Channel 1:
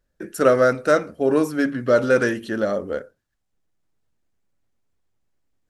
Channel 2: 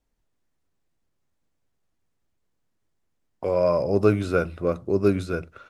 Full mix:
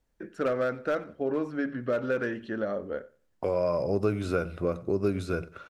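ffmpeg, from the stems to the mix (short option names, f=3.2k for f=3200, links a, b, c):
-filter_complex "[0:a]lowpass=2.9k,asoftclip=type=hard:threshold=-10dB,volume=-7dB,asplit=2[a][b];[b]volume=-22.5dB[c];[1:a]volume=0.5dB,asplit=2[d][e];[e]volume=-22dB[f];[c][f]amix=inputs=2:normalize=0,aecho=0:1:92|184|276|368:1|0.23|0.0529|0.0122[g];[a][d][g]amix=inputs=3:normalize=0,acompressor=threshold=-26dB:ratio=2.5"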